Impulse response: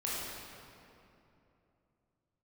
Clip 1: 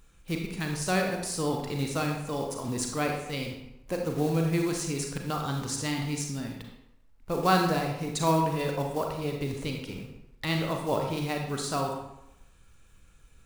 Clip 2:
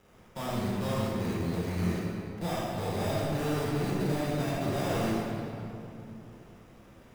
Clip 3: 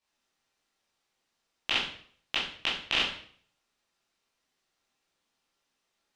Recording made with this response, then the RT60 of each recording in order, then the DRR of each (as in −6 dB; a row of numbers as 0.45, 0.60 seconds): 2; 0.85, 2.9, 0.55 seconds; 1.5, −7.5, −8.5 decibels